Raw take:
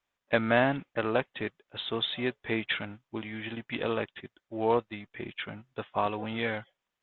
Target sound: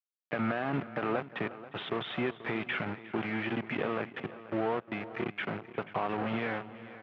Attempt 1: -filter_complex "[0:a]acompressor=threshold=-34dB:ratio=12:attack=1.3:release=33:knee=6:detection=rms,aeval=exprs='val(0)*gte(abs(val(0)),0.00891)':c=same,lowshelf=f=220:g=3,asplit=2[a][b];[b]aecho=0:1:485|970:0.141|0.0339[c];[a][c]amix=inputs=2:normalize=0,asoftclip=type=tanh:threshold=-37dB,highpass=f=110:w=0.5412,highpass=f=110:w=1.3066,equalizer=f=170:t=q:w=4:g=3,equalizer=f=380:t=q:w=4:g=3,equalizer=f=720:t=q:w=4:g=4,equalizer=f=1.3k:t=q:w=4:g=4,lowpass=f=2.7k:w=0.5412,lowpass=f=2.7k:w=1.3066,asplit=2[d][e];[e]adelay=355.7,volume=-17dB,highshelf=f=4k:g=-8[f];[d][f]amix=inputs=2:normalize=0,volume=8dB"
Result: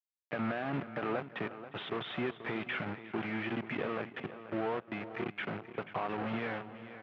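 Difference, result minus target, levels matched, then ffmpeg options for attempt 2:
soft clip: distortion +11 dB
-filter_complex "[0:a]acompressor=threshold=-34dB:ratio=12:attack=1.3:release=33:knee=6:detection=rms,aeval=exprs='val(0)*gte(abs(val(0)),0.00891)':c=same,lowshelf=f=220:g=3,asplit=2[a][b];[b]aecho=0:1:485|970:0.141|0.0339[c];[a][c]amix=inputs=2:normalize=0,asoftclip=type=tanh:threshold=-28dB,highpass=f=110:w=0.5412,highpass=f=110:w=1.3066,equalizer=f=170:t=q:w=4:g=3,equalizer=f=380:t=q:w=4:g=3,equalizer=f=720:t=q:w=4:g=4,equalizer=f=1.3k:t=q:w=4:g=4,lowpass=f=2.7k:w=0.5412,lowpass=f=2.7k:w=1.3066,asplit=2[d][e];[e]adelay=355.7,volume=-17dB,highshelf=f=4k:g=-8[f];[d][f]amix=inputs=2:normalize=0,volume=8dB"

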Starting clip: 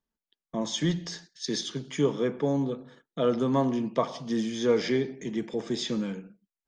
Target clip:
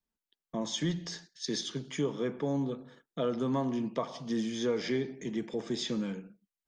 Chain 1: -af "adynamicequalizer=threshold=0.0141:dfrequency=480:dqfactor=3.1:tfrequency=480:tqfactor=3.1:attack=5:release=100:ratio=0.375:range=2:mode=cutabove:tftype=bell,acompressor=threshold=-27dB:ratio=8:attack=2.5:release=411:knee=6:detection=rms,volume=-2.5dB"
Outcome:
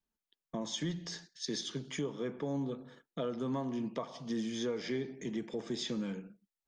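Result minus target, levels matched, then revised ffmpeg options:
compressor: peak gain reduction +6 dB
-af "adynamicequalizer=threshold=0.0141:dfrequency=480:dqfactor=3.1:tfrequency=480:tqfactor=3.1:attack=5:release=100:ratio=0.375:range=2:mode=cutabove:tftype=bell,acompressor=threshold=-20dB:ratio=8:attack=2.5:release=411:knee=6:detection=rms,volume=-2.5dB"

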